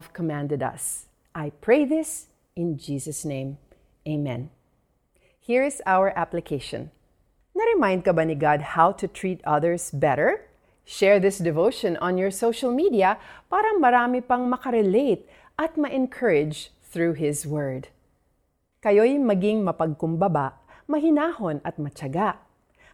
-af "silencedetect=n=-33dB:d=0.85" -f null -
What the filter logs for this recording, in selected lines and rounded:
silence_start: 4.46
silence_end: 5.49 | silence_duration: 1.03
silence_start: 17.84
silence_end: 18.85 | silence_duration: 1.01